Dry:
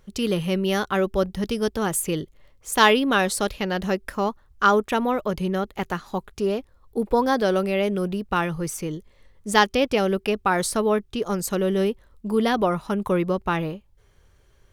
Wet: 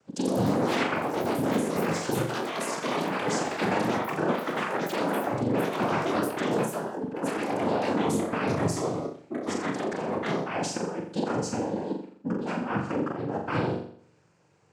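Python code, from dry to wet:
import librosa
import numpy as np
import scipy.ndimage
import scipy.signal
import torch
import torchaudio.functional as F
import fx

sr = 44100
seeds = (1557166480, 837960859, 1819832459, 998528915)

y = fx.peak_eq(x, sr, hz=2900.0, db=-9.0, octaves=1.5)
y = fx.over_compress(y, sr, threshold_db=-25.0, ratio=-0.5)
y = fx.formant_shift(y, sr, semitones=2)
y = fx.noise_vocoder(y, sr, seeds[0], bands=8)
y = fx.room_flutter(y, sr, wall_m=7.2, rt60_s=0.57)
y = fx.echo_pitch(y, sr, ms=131, semitones=5, count=3, db_per_echo=-3.0)
y = y * librosa.db_to_amplitude(-3.5)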